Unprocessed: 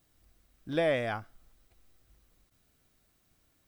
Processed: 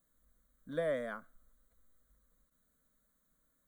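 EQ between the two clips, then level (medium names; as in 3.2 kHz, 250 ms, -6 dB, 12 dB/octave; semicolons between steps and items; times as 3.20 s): Butterworth band-stop 5.2 kHz, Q 2.7; static phaser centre 530 Hz, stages 8; -4.5 dB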